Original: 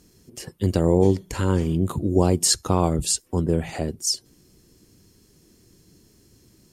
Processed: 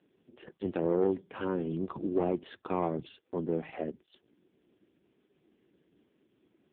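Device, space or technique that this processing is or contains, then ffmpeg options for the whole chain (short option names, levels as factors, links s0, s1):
telephone: -af "highpass=260,lowpass=3200,asoftclip=type=tanh:threshold=0.211,volume=0.596" -ar 8000 -c:a libopencore_amrnb -b:a 4750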